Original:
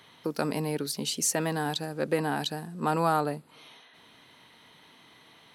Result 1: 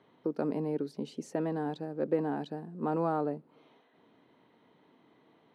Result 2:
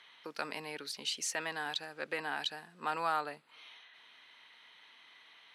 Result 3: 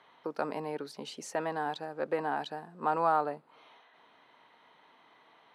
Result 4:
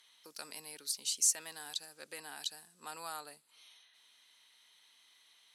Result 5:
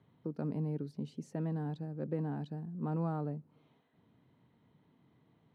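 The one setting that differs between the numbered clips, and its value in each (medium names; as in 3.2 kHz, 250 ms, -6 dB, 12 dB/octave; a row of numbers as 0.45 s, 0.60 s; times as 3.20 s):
band-pass filter, frequency: 340 Hz, 2.3 kHz, 870 Hz, 7.7 kHz, 120 Hz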